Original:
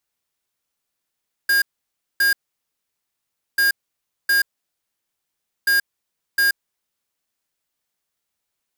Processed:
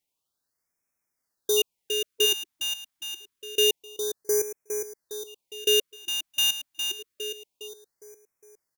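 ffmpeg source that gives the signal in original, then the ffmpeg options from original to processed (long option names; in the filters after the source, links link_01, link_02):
-f lavfi -i "aevalsrc='0.15*(2*lt(mod(1620*t,1),0.5)-1)*clip(min(mod(mod(t,2.09),0.71),0.13-mod(mod(t,2.09),0.71))/0.005,0,1)*lt(mod(t,2.09),1.42)':duration=6.27:sample_rate=44100"
-af "aeval=exprs='val(0)*sin(2*PI*1200*n/s)':channel_layout=same,aecho=1:1:409|818|1227|1636|2045|2454:0.473|0.237|0.118|0.0591|0.0296|0.0148,afftfilt=real='re*(1-between(b*sr/1024,410*pow(3700/410,0.5+0.5*sin(2*PI*0.27*pts/sr))/1.41,410*pow(3700/410,0.5+0.5*sin(2*PI*0.27*pts/sr))*1.41))':imag='im*(1-between(b*sr/1024,410*pow(3700/410,0.5+0.5*sin(2*PI*0.27*pts/sr))/1.41,410*pow(3700/410,0.5+0.5*sin(2*PI*0.27*pts/sr))*1.41))':win_size=1024:overlap=0.75"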